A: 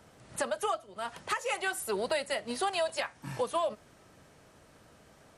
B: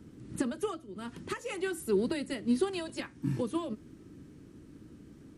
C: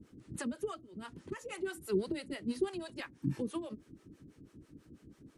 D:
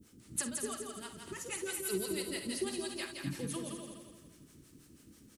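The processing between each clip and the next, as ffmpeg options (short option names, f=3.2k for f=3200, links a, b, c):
-af "lowshelf=f=450:t=q:w=3:g=13,volume=-6dB"
-filter_complex "[0:a]acrossover=split=490[a][b];[a]aeval=exprs='val(0)*(1-1/2+1/2*cos(2*PI*6.1*n/s))':c=same[c];[b]aeval=exprs='val(0)*(1-1/2-1/2*cos(2*PI*6.1*n/s))':c=same[d];[c][d]amix=inputs=2:normalize=0"
-filter_complex "[0:a]asplit=2[a][b];[b]aecho=0:1:169|338|507|676|845:0.562|0.236|0.0992|0.0417|0.0175[c];[a][c]amix=inputs=2:normalize=0,crystalizer=i=5.5:c=0,asplit=2[d][e];[e]aecho=0:1:49|67|247:0.282|0.158|0.355[f];[d][f]amix=inputs=2:normalize=0,volume=-5dB"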